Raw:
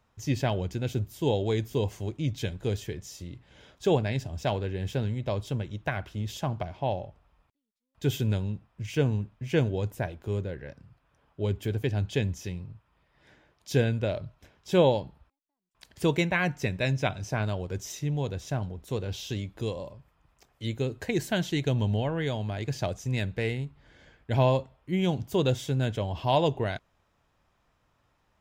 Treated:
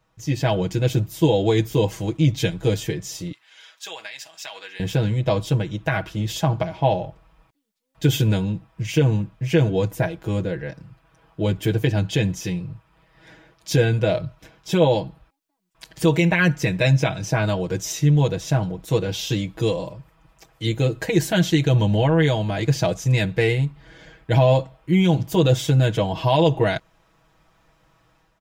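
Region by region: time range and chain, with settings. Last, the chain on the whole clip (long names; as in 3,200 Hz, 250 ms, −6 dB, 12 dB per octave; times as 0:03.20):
0:03.32–0:04.80: high-pass filter 1,500 Hz + downward compressor, threshold −41 dBFS
whole clip: automatic gain control gain up to 8 dB; brickwall limiter −11.5 dBFS; comb filter 6.2 ms, depth 93%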